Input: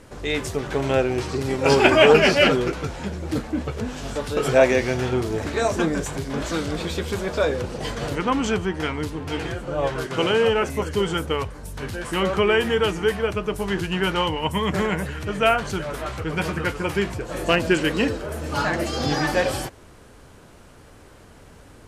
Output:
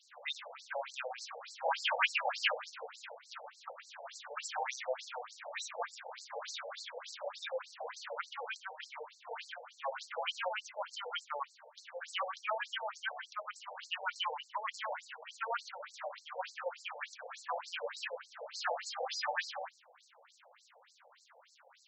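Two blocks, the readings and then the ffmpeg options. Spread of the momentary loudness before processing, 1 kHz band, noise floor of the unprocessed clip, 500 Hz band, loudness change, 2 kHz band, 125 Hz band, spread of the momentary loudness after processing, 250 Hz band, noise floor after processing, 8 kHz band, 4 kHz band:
11 LU, -12.5 dB, -47 dBFS, -22.0 dB, -17.5 dB, -14.0 dB, under -40 dB, 12 LU, under -40 dB, -66 dBFS, -14.0 dB, -13.5 dB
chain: -af "afftfilt=real='re*lt(hypot(re,im),0.631)':imag='im*lt(hypot(re,im),0.631)':win_size=1024:overlap=0.75,acrusher=bits=7:mix=0:aa=0.5,afftfilt=real='re*between(b*sr/1024,620*pow(5900/620,0.5+0.5*sin(2*PI*3.4*pts/sr))/1.41,620*pow(5900/620,0.5+0.5*sin(2*PI*3.4*pts/sr))*1.41)':imag='im*between(b*sr/1024,620*pow(5900/620,0.5+0.5*sin(2*PI*3.4*pts/sr))/1.41,620*pow(5900/620,0.5+0.5*sin(2*PI*3.4*pts/sr))*1.41)':win_size=1024:overlap=0.75,volume=-5.5dB"

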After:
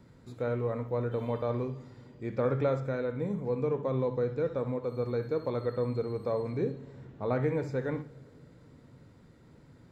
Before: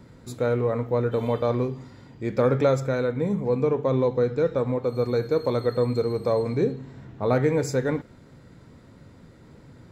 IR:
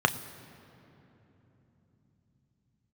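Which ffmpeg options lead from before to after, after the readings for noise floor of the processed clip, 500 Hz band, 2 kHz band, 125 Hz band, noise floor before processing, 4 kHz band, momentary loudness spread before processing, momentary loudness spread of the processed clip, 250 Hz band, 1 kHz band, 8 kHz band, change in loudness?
-57 dBFS, -8.0 dB, -8.0 dB, -6.5 dB, -51 dBFS, under -10 dB, 7 LU, 8 LU, -7.5 dB, -7.5 dB, n/a, -7.5 dB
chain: -filter_complex "[0:a]acrossover=split=3600[a][b];[b]acompressor=threshold=-59dB:ratio=4:attack=1:release=60[c];[a][c]amix=inputs=2:normalize=0,asplit=2[d][e];[1:a]atrim=start_sample=2205,adelay=64[f];[e][f]afir=irnorm=-1:irlink=0,volume=-25.5dB[g];[d][g]amix=inputs=2:normalize=0,volume=-8dB"

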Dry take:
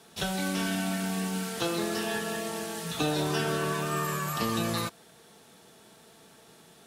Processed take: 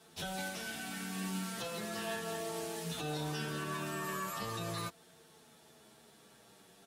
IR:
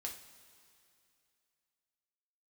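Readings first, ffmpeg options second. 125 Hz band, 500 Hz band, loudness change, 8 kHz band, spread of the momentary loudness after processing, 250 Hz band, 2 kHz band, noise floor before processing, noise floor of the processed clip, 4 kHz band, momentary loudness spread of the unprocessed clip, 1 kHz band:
-8.5 dB, -9.0 dB, -8.5 dB, -7.5 dB, 3 LU, -10.5 dB, -7.5 dB, -56 dBFS, -62 dBFS, -8.0 dB, 5 LU, -8.0 dB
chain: -filter_complex "[0:a]alimiter=limit=-22.5dB:level=0:latency=1:release=225,asplit=2[a][b];[b]adelay=8.6,afreqshift=-0.4[c];[a][c]amix=inputs=2:normalize=1,volume=-2.5dB"

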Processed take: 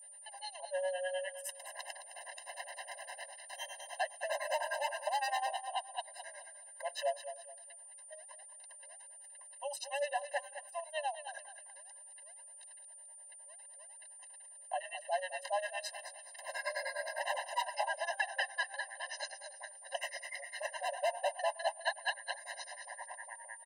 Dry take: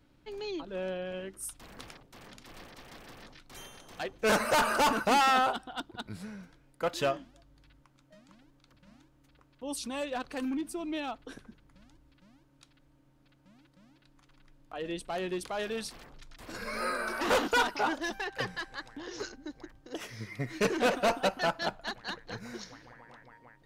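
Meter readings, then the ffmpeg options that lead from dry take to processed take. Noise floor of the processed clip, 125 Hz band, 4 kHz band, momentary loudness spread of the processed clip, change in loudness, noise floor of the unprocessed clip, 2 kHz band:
-54 dBFS, under -40 dB, -5.5 dB, 15 LU, -7.5 dB, -65 dBFS, -5.0 dB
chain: -filter_complex "[0:a]equalizer=f=11k:w=0.58:g=-12.5,bandreject=f=880:w=15,acrossover=split=590|2500[a][b][c];[c]alimiter=level_in=10dB:limit=-24dB:level=0:latency=1:release=33,volume=-10dB[d];[a][b][d]amix=inputs=3:normalize=0,acrossover=split=490[e][f];[e]aeval=exprs='val(0)*(1-1/2+1/2*cos(2*PI*9.8*n/s))':c=same[g];[f]aeval=exprs='val(0)*(1-1/2-1/2*cos(2*PI*9.8*n/s))':c=same[h];[g][h]amix=inputs=2:normalize=0,equalizer=f=3.6k:w=4:g=-3,aeval=exprs='0.0562*(abs(mod(val(0)/0.0562+3,4)-2)-1)':c=same,acompressor=threshold=-43dB:ratio=6,aecho=1:1:212|424|636:0.282|0.0874|0.0271,aeval=exprs='val(0)+0.000631*sin(2*PI*9200*n/s)':c=same,afftfilt=real='re*eq(mod(floor(b*sr/1024/530),2),1)':imag='im*eq(mod(floor(b*sr/1024/530),2),1)':win_size=1024:overlap=0.75,volume=13dB"

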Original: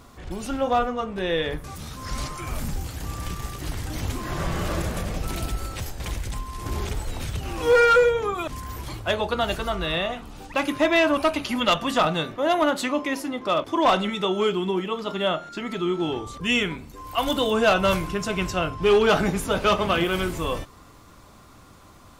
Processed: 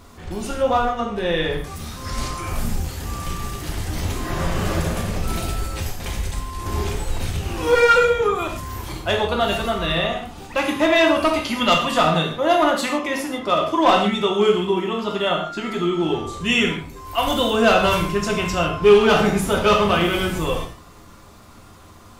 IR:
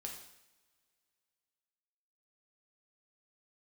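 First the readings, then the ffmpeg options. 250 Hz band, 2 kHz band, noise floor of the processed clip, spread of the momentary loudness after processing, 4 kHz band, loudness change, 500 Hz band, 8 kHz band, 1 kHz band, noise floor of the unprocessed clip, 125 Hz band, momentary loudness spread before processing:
+4.0 dB, +3.5 dB, -45 dBFS, 13 LU, +4.5 dB, +4.0 dB, +4.0 dB, +4.5 dB, +4.0 dB, -49 dBFS, +4.5 dB, 14 LU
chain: -filter_complex "[1:a]atrim=start_sample=2205,afade=t=out:st=0.21:d=0.01,atrim=end_sample=9702[a];[0:a][a]afir=irnorm=-1:irlink=0,volume=7dB"

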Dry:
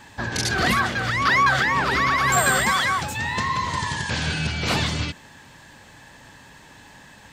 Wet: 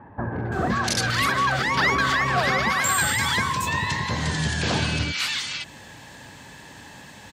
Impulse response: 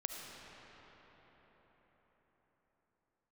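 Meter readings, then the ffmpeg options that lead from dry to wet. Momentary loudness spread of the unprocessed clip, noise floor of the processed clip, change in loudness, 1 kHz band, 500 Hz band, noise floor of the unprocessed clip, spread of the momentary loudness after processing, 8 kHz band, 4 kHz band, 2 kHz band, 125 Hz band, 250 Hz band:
8 LU, -45 dBFS, -1.5 dB, -2.0 dB, 0.0 dB, -48 dBFS, 9 LU, 0.0 dB, +0.5 dB, -1.5 dB, +0.5 dB, +0.5 dB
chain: -filter_complex "[0:a]highpass=60,asplit=2[a][b];[b]acompressor=threshold=-29dB:ratio=6,volume=1.5dB[c];[a][c]amix=inputs=2:normalize=0,acrossover=split=1300[d][e];[e]adelay=520[f];[d][f]amix=inputs=2:normalize=0,volume=-2.5dB"

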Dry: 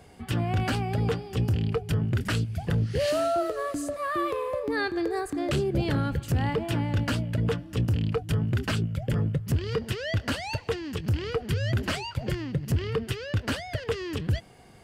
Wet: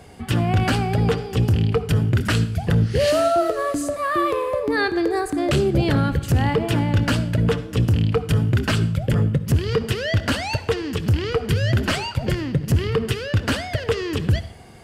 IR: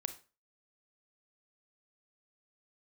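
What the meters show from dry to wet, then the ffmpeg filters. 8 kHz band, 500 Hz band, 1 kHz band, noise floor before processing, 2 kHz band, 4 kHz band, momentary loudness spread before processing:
+7.5 dB, +7.5 dB, +7.5 dB, -47 dBFS, +7.5 dB, +7.5 dB, 5 LU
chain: -filter_complex "[0:a]asplit=2[a][b];[1:a]atrim=start_sample=2205,asetrate=26460,aresample=44100[c];[b][c]afir=irnorm=-1:irlink=0,volume=-2dB[d];[a][d]amix=inputs=2:normalize=0,volume=1.5dB"

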